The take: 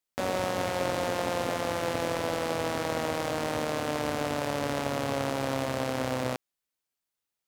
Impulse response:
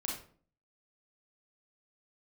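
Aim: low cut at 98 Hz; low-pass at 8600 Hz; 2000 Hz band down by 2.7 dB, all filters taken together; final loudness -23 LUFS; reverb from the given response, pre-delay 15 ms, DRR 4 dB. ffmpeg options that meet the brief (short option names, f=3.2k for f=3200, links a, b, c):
-filter_complex "[0:a]highpass=98,lowpass=8.6k,equalizer=f=2k:t=o:g=-3.5,asplit=2[a][b];[1:a]atrim=start_sample=2205,adelay=15[c];[b][c]afir=irnorm=-1:irlink=0,volume=-6dB[d];[a][d]amix=inputs=2:normalize=0,volume=6.5dB"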